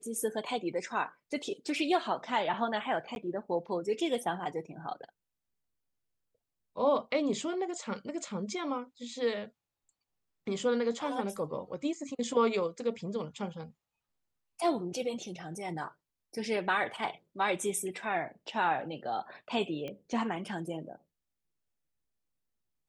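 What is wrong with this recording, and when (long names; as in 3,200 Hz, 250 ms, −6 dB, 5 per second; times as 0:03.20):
0:03.15–0:03.16: drop-out 11 ms
0:19.88: click −27 dBFS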